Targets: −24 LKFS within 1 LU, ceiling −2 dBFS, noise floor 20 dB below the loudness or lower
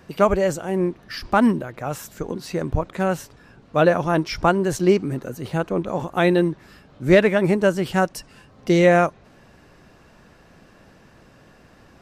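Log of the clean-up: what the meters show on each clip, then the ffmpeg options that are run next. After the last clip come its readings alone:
integrated loudness −21.0 LKFS; sample peak −4.0 dBFS; target loudness −24.0 LKFS
→ -af "volume=-3dB"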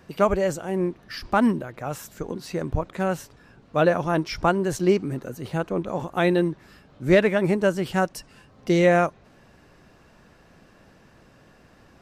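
integrated loudness −24.0 LKFS; sample peak −7.0 dBFS; background noise floor −55 dBFS

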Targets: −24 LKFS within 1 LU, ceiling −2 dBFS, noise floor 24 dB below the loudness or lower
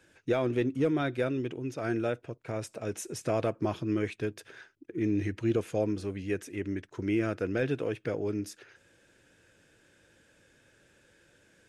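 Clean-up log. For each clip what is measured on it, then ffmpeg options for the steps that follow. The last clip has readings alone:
integrated loudness −32.0 LKFS; sample peak −17.5 dBFS; target loudness −24.0 LKFS
→ -af "volume=8dB"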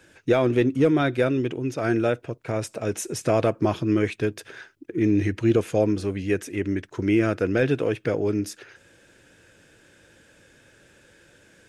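integrated loudness −24.0 LKFS; sample peak −9.5 dBFS; background noise floor −57 dBFS

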